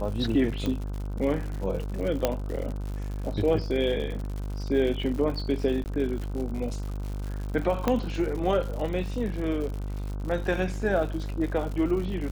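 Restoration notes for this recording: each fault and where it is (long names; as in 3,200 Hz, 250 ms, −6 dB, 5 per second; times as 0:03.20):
mains buzz 50 Hz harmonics 31 −32 dBFS
surface crackle 120 per second −34 dBFS
0:00.66: click −17 dBFS
0:02.25: click −9 dBFS
0:05.84–0:05.86: drop-out 19 ms
0:07.88: click −11 dBFS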